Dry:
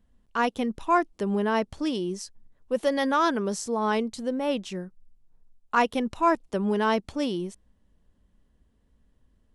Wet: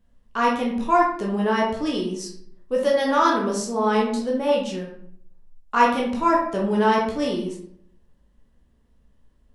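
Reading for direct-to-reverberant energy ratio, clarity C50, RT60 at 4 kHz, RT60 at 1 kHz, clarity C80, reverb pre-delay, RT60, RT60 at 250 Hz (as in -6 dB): -3.0 dB, 4.0 dB, 0.40 s, 0.60 s, 8.5 dB, 12 ms, 0.65 s, 0.70 s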